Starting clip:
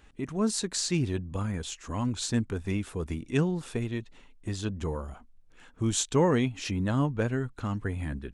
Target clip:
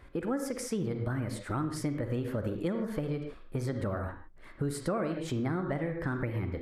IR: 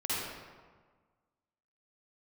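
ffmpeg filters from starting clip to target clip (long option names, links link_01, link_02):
-filter_complex "[0:a]asplit=2[link_01][link_02];[1:a]atrim=start_sample=2205,afade=type=out:start_time=0.25:duration=0.01,atrim=end_sample=11466,lowpass=3800[link_03];[link_02][link_03]afir=irnorm=-1:irlink=0,volume=-10.5dB[link_04];[link_01][link_04]amix=inputs=2:normalize=0,acompressor=threshold=-31dB:ratio=6,highshelf=frequency=1800:width_type=q:width=1.5:gain=-7.5,asetrate=55566,aresample=44100,volume=2dB"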